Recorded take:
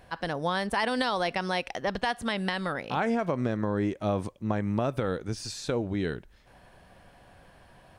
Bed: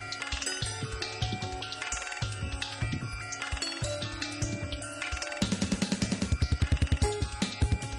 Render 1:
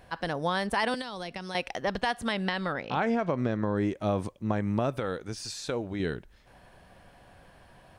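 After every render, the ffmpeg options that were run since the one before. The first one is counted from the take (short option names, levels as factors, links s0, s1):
-filter_complex "[0:a]asettb=1/sr,asplit=3[s0][s1][s2];[s0]atrim=end=0.944[s3];[s1]atrim=start=0.94:end=1.55,asetpts=PTS-STARTPTS,afade=t=in:d=0.004:c=qsin,afade=t=out:st=0.606:d=0.004:c=qsin,acrossover=split=330|2800[s4][s5][s6];[s4]acompressor=threshold=0.00891:ratio=4[s7];[s5]acompressor=threshold=0.01:ratio=4[s8];[s6]acompressor=threshold=0.00708:ratio=4[s9];[s7][s8][s9]amix=inputs=3:normalize=0[s10];[s2]atrim=start=1.546[s11];[s3][s10]acrossfade=d=0.004:c1=hsin:c2=qsin[s12];[s12][s11]acrossfade=d=0.004:c1=qsin:c2=hsin,asettb=1/sr,asplit=3[s13][s14][s15];[s13]atrim=end=2.374[s16];[s14]atrim=start=2.37:end=3.75,asetpts=PTS-STARTPTS,afade=t=in:d=0.004:c=qsin,afade=t=out:st=1.376:d=0.004:c=qsin,lowpass=5800[s17];[s15]atrim=start=3.746[s18];[s16][s17]acrossfade=d=0.004:c1=hsin:c2=qsin[s19];[s19][s18]acrossfade=d=0.004:c1=qsin:c2=hsin,asettb=1/sr,asplit=3[s20][s21][s22];[s20]atrim=end=4.974[s23];[s21]atrim=start=4.97:end=6,asetpts=PTS-STARTPTS,afade=t=in:d=0.004:c=qsin,afade=t=out:st=1.026:d=0.004:c=qsin,lowshelf=f=390:g=-6[s24];[s22]atrim=start=5.996[s25];[s23][s24]acrossfade=d=0.004:c1=hsin:c2=qsin[s26];[s26][s25]acrossfade=d=0.004:c1=qsin:c2=hsin"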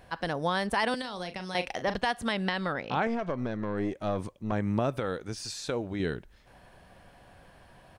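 -filter_complex "[0:a]asplit=3[s0][s1][s2];[s0]afade=t=out:st=1.02:d=0.02[s3];[s1]asplit=2[s4][s5];[s5]adelay=39,volume=0.316[s6];[s4][s6]amix=inputs=2:normalize=0,afade=t=in:st=1.02:d=0.02,afade=t=out:st=1.95:d=0.02[s7];[s2]afade=t=in:st=1.95:d=0.02[s8];[s3][s7][s8]amix=inputs=3:normalize=0,asettb=1/sr,asplit=3[s9][s10][s11];[s9]atrim=end=3.074[s12];[s10]atrim=start=3.07:end=4.52,asetpts=PTS-STARTPTS,afade=t=in:d=0.004:c=qsin,afade=t=out:st=1.446:d=0.004:c=qsin,aeval=exprs='(tanh(11.2*val(0)+0.5)-tanh(0.5))/11.2':c=same[s13];[s11]atrim=start=4.516[s14];[s12][s13]acrossfade=d=0.004:c1=hsin:c2=qsin[s15];[s15][s14]acrossfade=d=0.004:c1=qsin:c2=hsin"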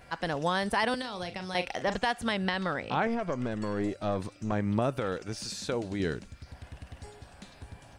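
-filter_complex "[1:a]volume=0.112[s0];[0:a][s0]amix=inputs=2:normalize=0"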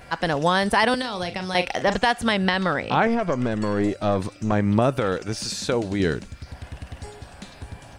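-af "volume=2.66"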